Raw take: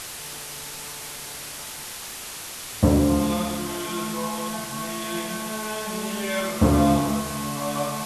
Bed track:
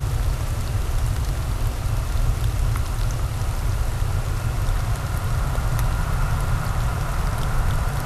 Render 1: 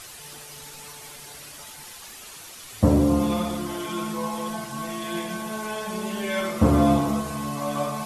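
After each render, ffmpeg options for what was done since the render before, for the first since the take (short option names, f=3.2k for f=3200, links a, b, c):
-af "afftdn=nr=9:nf=-37"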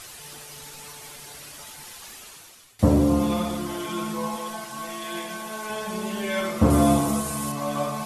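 -filter_complex "[0:a]asettb=1/sr,asplit=3[a][b][c];[a]atrim=end=4.364[d];[b]atrim=start=4.36:end=5.7,asetpts=PTS-STARTPTS,afade=t=in:d=0.004:c=qsin,afade=t=out:st=1.336:d=0.004:c=qsin,equalizer=f=92:w=0.39:g=-11.5[e];[c]atrim=start=5.696[f];[d][e]acrossfade=d=0.004:c1=hsin:c2=qsin[g];[g][f]acrossfade=d=0.004:c1=qsin:c2=hsin,asettb=1/sr,asplit=3[h][i][j];[h]atrim=end=6.704[k];[i]atrim=start=6.7:end=7.52,asetpts=PTS-STARTPTS,afade=t=in:d=0.004:c=qsin,afade=t=out:st=0.816:d=0.004:c=qsin,equalizer=f=9.6k:w=0.91:g=11.5[l];[j]atrim=start=7.516[m];[k][l]acrossfade=d=0.004:c1=hsin:c2=qsin[n];[n][m]acrossfade=d=0.004:c1=qsin:c2=hsin,asplit=2[o][p];[o]atrim=end=2.79,asetpts=PTS-STARTPTS,afade=t=out:st=2.14:d=0.65:silence=0.1[q];[p]atrim=start=2.79,asetpts=PTS-STARTPTS,afade=t=in:d=0.004:c=hsin:silence=0.1[r];[q][r]concat=n=2:v=0:a=1"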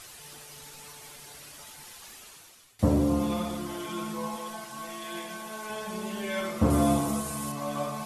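-af "volume=-5dB"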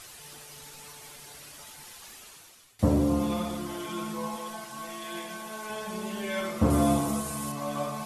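-af anull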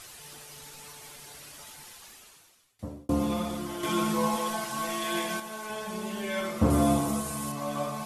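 -filter_complex "[0:a]asettb=1/sr,asplit=3[a][b][c];[a]atrim=end=3.834[d];[b]atrim=start=3.83:end=5.4,asetpts=PTS-STARTPTS,afade=t=in:d=0.004:c=qsin,afade=t=out:st=1.566:d=0.004:c=qsin,acontrast=86[e];[c]atrim=start=5.396[f];[d][e]acrossfade=d=0.004:c1=hsin:c2=qsin[g];[g][f]acrossfade=d=0.004:c1=qsin:c2=hsin,asplit=2[h][i];[h]atrim=end=3.09,asetpts=PTS-STARTPTS,afade=t=out:st=1.74:d=1.35[j];[i]atrim=start=3.09,asetpts=PTS-STARTPTS,afade=t=in:d=0.004:c=hsin[k];[j][k]concat=n=2:v=0:a=1"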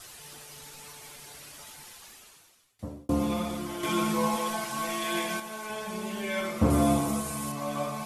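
-af "adynamicequalizer=threshold=0.00126:dfrequency=2300:dqfactor=7.8:tfrequency=2300:tqfactor=7.8:attack=5:release=100:ratio=0.375:range=2.5:mode=boostabove:tftype=bell"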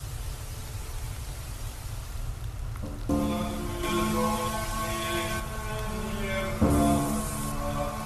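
-filter_complex "[1:a]volume=-13.5dB[a];[0:a][a]amix=inputs=2:normalize=0"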